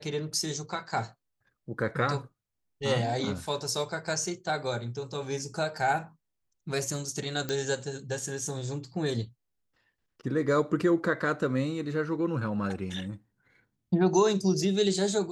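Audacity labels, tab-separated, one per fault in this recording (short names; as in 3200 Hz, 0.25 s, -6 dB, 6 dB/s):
7.490000	7.490000	pop -17 dBFS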